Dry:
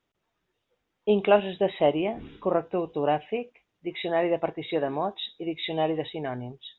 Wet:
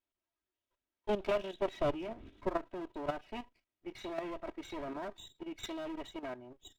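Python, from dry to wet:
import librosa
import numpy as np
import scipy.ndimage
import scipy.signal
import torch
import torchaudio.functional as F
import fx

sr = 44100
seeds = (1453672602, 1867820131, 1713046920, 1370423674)

y = fx.lower_of_two(x, sr, delay_ms=3.1)
y = fx.low_shelf(y, sr, hz=190.0, db=7.0, at=(1.77, 2.49))
y = fx.level_steps(y, sr, step_db=11)
y = y * 10.0 ** (-7.0 / 20.0)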